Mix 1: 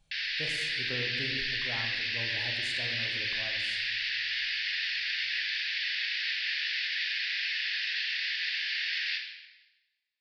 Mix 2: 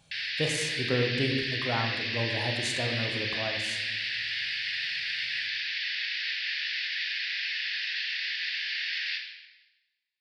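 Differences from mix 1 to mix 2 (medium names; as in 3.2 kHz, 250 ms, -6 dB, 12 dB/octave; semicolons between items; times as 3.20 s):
speech +12.0 dB; master: add high-pass 100 Hz 12 dB/octave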